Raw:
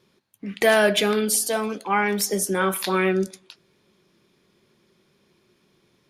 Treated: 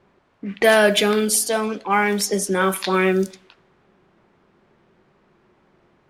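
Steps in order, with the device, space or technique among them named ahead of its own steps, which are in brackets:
cassette deck with a dynamic noise filter (white noise bed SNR 29 dB; low-pass that shuts in the quiet parts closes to 1,200 Hz, open at −18 dBFS)
level +3 dB

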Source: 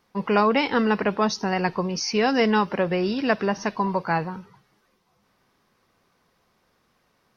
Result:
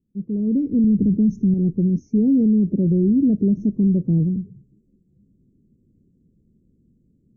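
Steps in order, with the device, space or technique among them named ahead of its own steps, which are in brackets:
0:00.84–0:01.54: bass and treble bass +11 dB, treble +9 dB
inverse Chebyshev band-stop filter 850–5,000 Hz, stop band 60 dB
low-bitrate web radio (automatic gain control gain up to 14 dB; brickwall limiter −11 dBFS, peak gain reduction 9.5 dB; MP3 32 kbit/s 32,000 Hz)

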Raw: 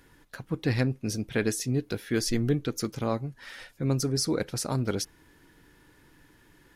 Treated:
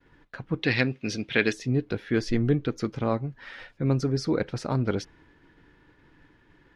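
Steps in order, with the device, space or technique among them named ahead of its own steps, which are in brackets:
hearing-loss simulation (low-pass filter 3,100 Hz 12 dB per octave; downward expander −55 dBFS)
0:00.62–0:01.53: meter weighting curve D
level +2.5 dB

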